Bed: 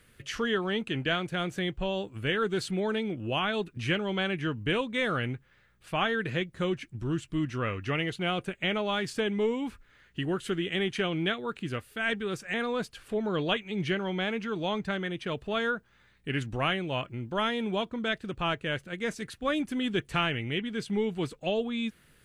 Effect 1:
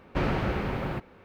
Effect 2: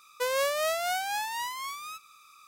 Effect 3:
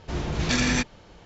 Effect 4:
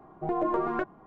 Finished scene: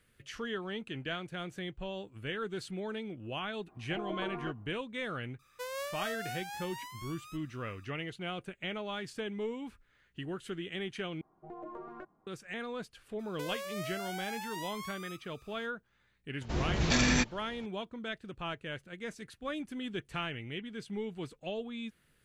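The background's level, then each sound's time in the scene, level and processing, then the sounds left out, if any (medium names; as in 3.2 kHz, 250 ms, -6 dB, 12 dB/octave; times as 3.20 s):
bed -9 dB
3.68 s: add 4 -11.5 dB
5.39 s: add 2 -11.5 dB
11.21 s: replace with 4 -17.5 dB
13.19 s: add 2 -8 dB + compression, threshold -30 dBFS
16.41 s: add 3 -3.5 dB
not used: 1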